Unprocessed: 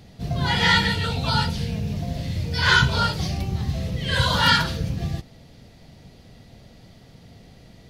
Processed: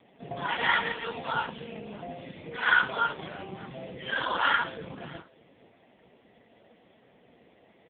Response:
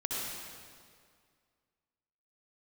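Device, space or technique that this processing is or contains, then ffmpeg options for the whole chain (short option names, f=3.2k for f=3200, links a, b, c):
satellite phone: -af "highpass=330,lowpass=3k,aecho=1:1:601:0.0668" -ar 8000 -c:a libopencore_amrnb -b:a 5150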